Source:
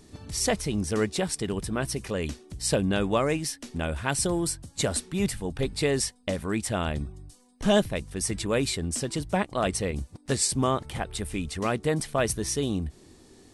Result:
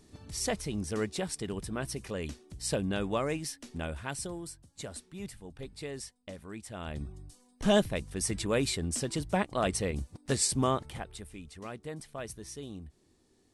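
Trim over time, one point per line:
3.85 s -6.5 dB
4.48 s -15 dB
6.72 s -15 dB
7.12 s -3 dB
10.72 s -3 dB
11.34 s -15 dB

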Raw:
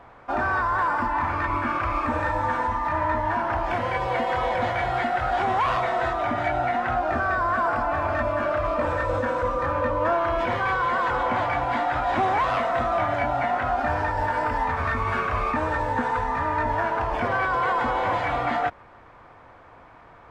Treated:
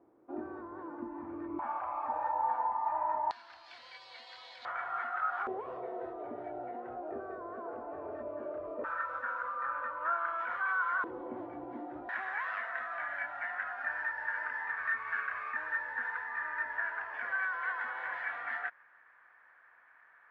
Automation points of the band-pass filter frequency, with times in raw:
band-pass filter, Q 6.7
330 Hz
from 1.59 s 820 Hz
from 3.31 s 4.3 kHz
from 4.65 s 1.3 kHz
from 5.47 s 420 Hz
from 8.84 s 1.4 kHz
from 11.04 s 340 Hz
from 12.09 s 1.7 kHz

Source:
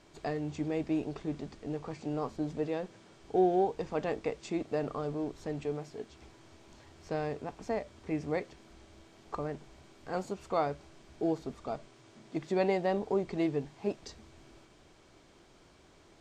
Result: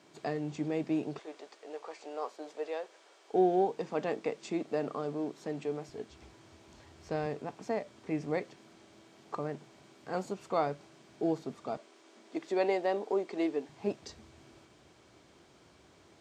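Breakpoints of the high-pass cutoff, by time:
high-pass 24 dB/octave
130 Hz
from 1.19 s 450 Hz
from 3.33 s 160 Hz
from 5.89 s 46 Hz
from 7.26 s 120 Hz
from 11.77 s 270 Hz
from 13.69 s 64 Hz

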